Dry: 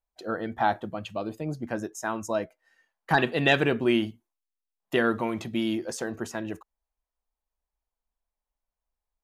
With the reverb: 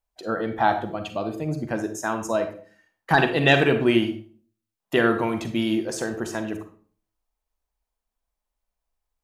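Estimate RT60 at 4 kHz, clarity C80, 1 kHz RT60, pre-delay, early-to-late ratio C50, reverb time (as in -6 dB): 0.35 s, 14.0 dB, 0.40 s, 37 ms, 9.0 dB, 0.45 s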